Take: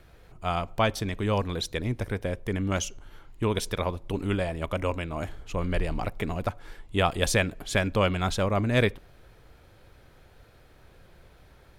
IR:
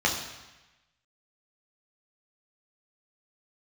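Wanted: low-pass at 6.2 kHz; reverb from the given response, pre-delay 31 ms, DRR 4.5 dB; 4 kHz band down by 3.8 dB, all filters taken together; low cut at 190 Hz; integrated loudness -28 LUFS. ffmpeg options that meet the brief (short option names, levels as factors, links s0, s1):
-filter_complex "[0:a]highpass=190,lowpass=6200,equalizer=f=4000:t=o:g=-4.5,asplit=2[s0][s1];[1:a]atrim=start_sample=2205,adelay=31[s2];[s1][s2]afir=irnorm=-1:irlink=0,volume=0.126[s3];[s0][s3]amix=inputs=2:normalize=0,volume=1.12"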